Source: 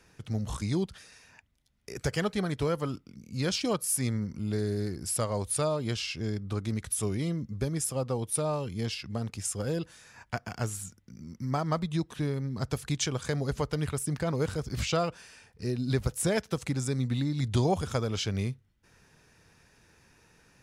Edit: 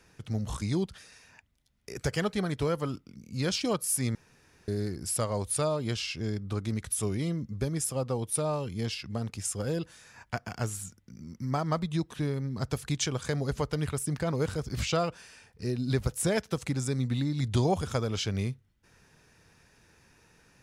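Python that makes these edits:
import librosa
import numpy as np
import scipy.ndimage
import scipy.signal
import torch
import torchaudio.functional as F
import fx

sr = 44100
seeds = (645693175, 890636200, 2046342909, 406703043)

y = fx.edit(x, sr, fx.room_tone_fill(start_s=4.15, length_s=0.53), tone=tone)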